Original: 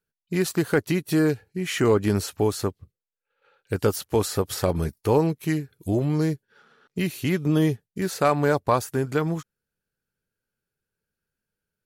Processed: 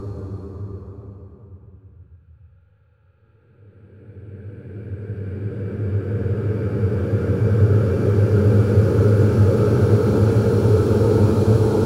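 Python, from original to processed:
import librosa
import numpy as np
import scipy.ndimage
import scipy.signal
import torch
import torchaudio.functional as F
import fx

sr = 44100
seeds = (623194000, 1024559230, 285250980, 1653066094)

y = fx.paulstretch(x, sr, seeds[0], factor=11.0, window_s=1.0, from_s=2.96)
y = fx.riaa(y, sr, side='playback')
y = y * 10.0 ** (2.5 / 20.0)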